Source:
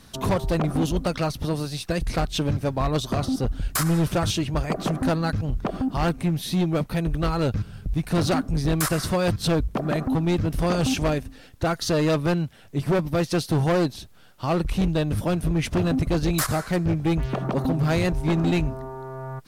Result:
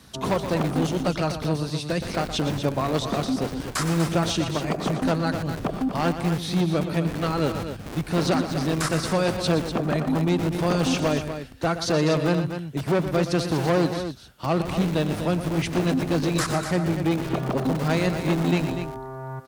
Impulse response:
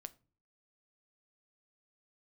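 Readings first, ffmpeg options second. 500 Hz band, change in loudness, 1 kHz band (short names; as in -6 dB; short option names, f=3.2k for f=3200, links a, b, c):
+1.0 dB, 0.0 dB, +1.0 dB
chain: -filter_complex "[0:a]acrossover=split=9400[a][b];[b]acompressor=threshold=-59dB:ratio=4:attack=1:release=60[c];[a][c]amix=inputs=2:normalize=0,highpass=f=41:w=0.5412,highpass=f=41:w=1.3066,acrossover=split=130|4200[d][e][f];[d]aeval=exprs='(mod(35.5*val(0)+1,2)-1)/35.5':c=same[g];[g][e][f]amix=inputs=3:normalize=0,aecho=1:1:119.5|244.9:0.282|0.355"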